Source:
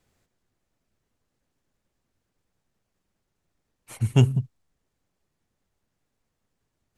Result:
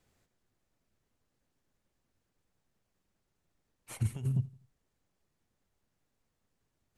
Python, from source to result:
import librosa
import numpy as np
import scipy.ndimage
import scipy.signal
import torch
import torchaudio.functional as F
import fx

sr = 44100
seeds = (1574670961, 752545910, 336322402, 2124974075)

p1 = fx.over_compress(x, sr, threshold_db=-22.0, ratio=-0.5)
p2 = p1 + fx.echo_feedback(p1, sr, ms=83, feedback_pct=44, wet_db=-22.5, dry=0)
y = F.gain(torch.from_numpy(p2), -7.0).numpy()